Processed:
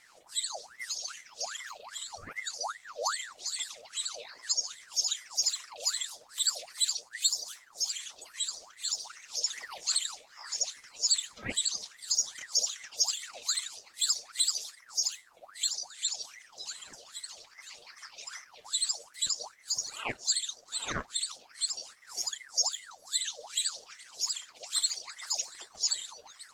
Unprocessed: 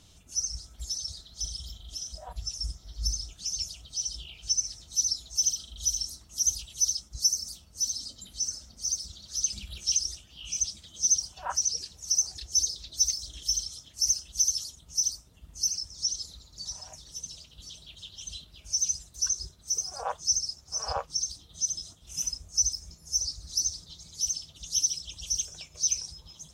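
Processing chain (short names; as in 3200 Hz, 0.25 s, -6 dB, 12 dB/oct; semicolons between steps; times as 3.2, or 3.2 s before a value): wow and flutter 22 cents; 22.77–23.43 frequency shift -110 Hz; ring modulator with a swept carrier 1300 Hz, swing 60%, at 2.5 Hz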